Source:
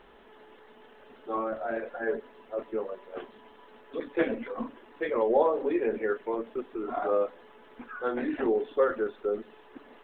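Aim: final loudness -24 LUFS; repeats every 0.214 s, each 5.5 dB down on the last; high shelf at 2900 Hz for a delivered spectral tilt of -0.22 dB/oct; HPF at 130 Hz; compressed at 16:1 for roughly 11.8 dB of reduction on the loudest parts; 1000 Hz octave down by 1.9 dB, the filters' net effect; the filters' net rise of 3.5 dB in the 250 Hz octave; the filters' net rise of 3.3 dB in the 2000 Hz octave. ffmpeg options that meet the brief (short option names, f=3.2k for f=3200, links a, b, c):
-af "highpass=130,equalizer=f=250:t=o:g=5.5,equalizer=f=1k:t=o:g=-5,equalizer=f=2k:t=o:g=3.5,highshelf=f=2.9k:g=8,acompressor=threshold=-30dB:ratio=16,aecho=1:1:214|428|642|856|1070|1284|1498:0.531|0.281|0.149|0.079|0.0419|0.0222|0.0118,volume=11.5dB"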